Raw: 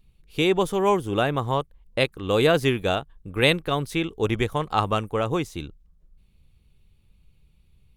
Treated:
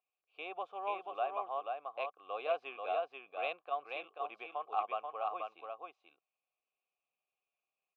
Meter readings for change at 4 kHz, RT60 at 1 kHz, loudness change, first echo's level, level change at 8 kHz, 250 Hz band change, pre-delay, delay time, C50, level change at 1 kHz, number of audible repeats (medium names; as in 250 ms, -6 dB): -23.0 dB, no reverb, -16.0 dB, -4.0 dB, under -35 dB, -34.0 dB, no reverb, 485 ms, no reverb, -9.5 dB, 1